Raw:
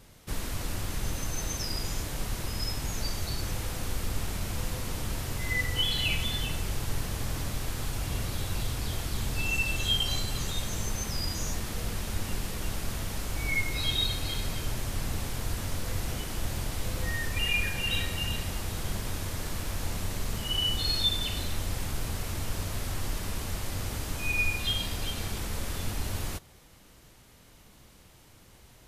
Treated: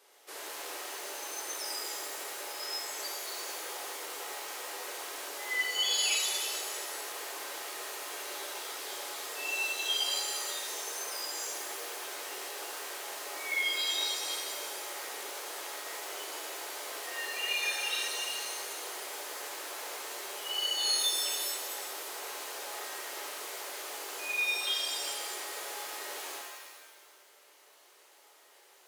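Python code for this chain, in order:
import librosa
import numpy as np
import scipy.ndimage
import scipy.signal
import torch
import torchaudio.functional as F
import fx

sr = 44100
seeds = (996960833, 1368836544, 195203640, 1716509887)

y = scipy.signal.sosfilt(scipy.signal.ellip(4, 1.0, 80, 380.0, 'highpass', fs=sr, output='sos'), x)
y = fx.rev_shimmer(y, sr, seeds[0], rt60_s=1.3, semitones=7, shimmer_db=-2, drr_db=0.5)
y = y * librosa.db_to_amplitude(-4.5)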